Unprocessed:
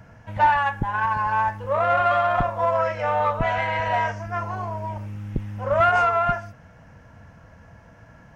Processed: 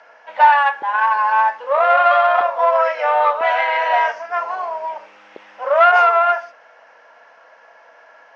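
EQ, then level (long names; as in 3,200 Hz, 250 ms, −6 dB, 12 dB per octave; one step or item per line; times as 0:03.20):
high-pass filter 520 Hz 24 dB per octave
low-pass filter 5,200 Hz 24 dB per octave
+7.0 dB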